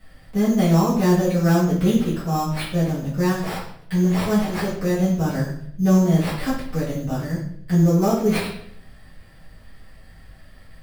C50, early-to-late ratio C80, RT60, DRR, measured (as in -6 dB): 4.5 dB, 8.0 dB, 0.65 s, -11.0 dB